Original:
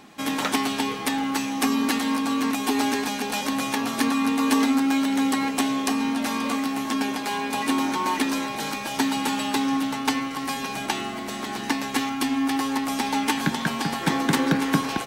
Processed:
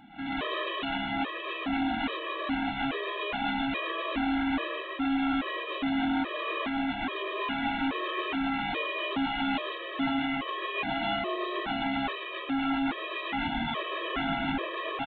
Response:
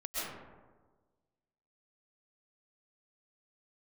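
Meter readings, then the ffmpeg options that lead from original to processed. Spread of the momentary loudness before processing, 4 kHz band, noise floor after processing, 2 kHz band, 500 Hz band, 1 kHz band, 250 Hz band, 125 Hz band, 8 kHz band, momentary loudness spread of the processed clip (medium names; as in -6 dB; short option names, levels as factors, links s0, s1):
6 LU, -5.5 dB, -38 dBFS, -3.5 dB, -3.0 dB, -5.0 dB, -8.0 dB, -9.5 dB, under -40 dB, 4 LU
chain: -filter_complex "[0:a]acompressor=threshold=0.0562:ratio=3,aeval=exprs='0.0531*(abs(mod(val(0)/0.0531+3,4)-2)-1)':c=same[s0];[1:a]atrim=start_sample=2205,afade=t=out:st=0.23:d=0.01,atrim=end_sample=10584,asetrate=48510,aresample=44100[s1];[s0][s1]afir=irnorm=-1:irlink=0,aresample=8000,aresample=44100,afftfilt=real='re*gt(sin(2*PI*1.2*pts/sr)*(1-2*mod(floor(b*sr/1024/330),2)),0)':imag='im*gt(sin(2*PI*1.2*pts/sr)*(1-2*mod(floor(b*sr/1024/330),2)),0)':win_size=1024:overlap=0.75,volume=1.58"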